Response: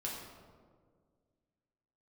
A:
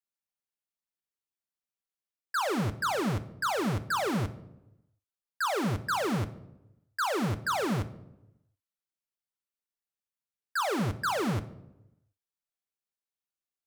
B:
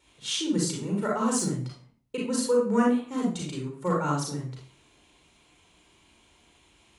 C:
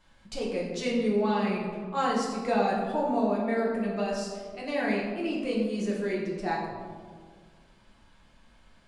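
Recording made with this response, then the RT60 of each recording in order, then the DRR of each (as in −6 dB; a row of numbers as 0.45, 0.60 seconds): C; 0.90, 0.45, 1.8 seconds; 8.5, −2.5, −4.5 decibels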